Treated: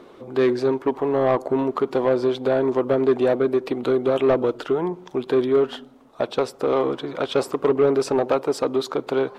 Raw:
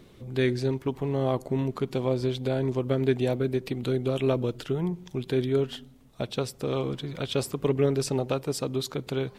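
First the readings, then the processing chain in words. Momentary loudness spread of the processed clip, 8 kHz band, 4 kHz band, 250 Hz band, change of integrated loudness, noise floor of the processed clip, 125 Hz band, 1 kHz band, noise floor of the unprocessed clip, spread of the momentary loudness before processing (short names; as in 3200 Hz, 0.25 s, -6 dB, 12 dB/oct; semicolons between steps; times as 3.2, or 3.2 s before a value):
6 LU, n/a, +1.0 dB, +4.5 dB, +6.5 dB, -48 dBFS, -6.0 dB, +10.5 dB, -53 dBFS, 6 LU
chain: band shelf 580 Hz +10.5 dB 2.9 oct; overdrive pedal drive 16 dB, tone 3300 Hz, clips at -3 dBFS; gain -5.5 dB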